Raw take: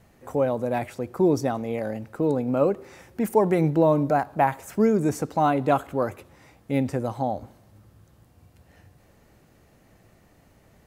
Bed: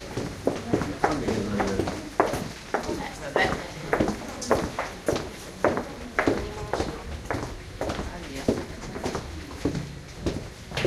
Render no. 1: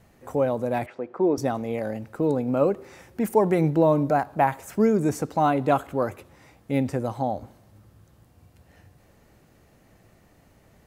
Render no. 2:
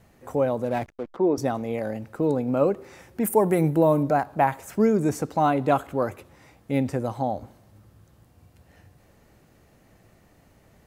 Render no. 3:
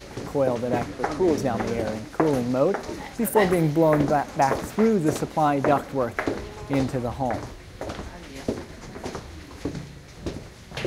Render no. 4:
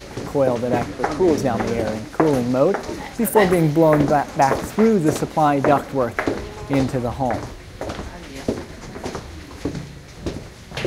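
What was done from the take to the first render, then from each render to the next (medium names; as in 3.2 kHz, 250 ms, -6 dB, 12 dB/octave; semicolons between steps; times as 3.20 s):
0.86–1.38 s: band-pass 280–2200 Hz
0.64–1.17 s: hysteresis with a dead band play -32.5 dBFS; 3.23–4.03 s: resonant high shelf 7.6 kHz +9 dB, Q 1.5
add bed -3.5 dB
trim +4.5 dB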